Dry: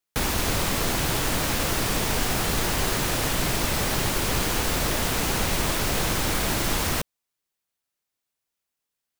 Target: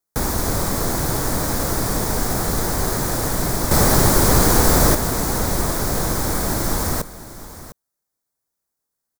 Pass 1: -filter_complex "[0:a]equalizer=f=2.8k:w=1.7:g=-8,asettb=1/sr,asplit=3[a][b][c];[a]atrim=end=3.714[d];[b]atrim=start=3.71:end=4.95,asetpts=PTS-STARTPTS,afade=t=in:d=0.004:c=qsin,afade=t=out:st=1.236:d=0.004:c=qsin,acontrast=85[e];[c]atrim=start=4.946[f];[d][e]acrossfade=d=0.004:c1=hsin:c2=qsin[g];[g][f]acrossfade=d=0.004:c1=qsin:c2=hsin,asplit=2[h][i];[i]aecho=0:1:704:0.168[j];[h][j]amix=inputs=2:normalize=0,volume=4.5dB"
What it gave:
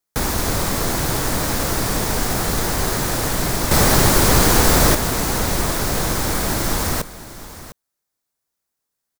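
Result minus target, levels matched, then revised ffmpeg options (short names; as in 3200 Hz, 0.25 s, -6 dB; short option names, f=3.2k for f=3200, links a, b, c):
2000 Hz band +3.0 dB
-filter_complex "[0:a]equalizer=f=2.8k:w=1.7:g=-18.5,asettb=1/sr,asplit=3[a][b][c];[a]atrim=end=3.714[d];[b]atrim=start=3.71:end=4.95,asetpts=PTS-STARTPTS,afade=t=in:d=0.004:c=qsin,afade=t=out:st=1.236:d=0.004:c=qsin,acontrast=85[e];[c]atrim=start=4.946[f];[d][e]acrossfade=d=0.004:c1=hsin:c2=qsin[g];[g][f]acrossfade=d=0.004:c1=qsin:c2=hsin,asplit=2[h][i];[i]aecho=0:1:704:0.168[j];[h][j]amix=inputs=2:normalize=0,volume=4.5dB"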